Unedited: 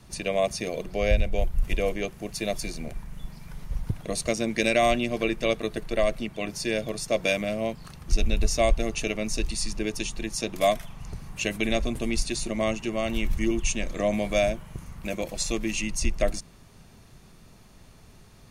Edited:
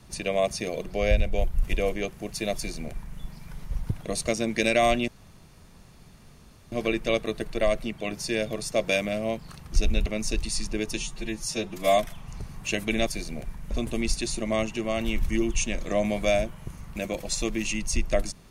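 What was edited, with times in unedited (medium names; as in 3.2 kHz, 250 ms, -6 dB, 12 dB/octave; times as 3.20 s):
2.55–3.19 s: copy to 11.79 s
5.08 s: insert room tone 1.64 s
8.42–9.12 s: delete
10.03–10.70 s: stretch 1.5×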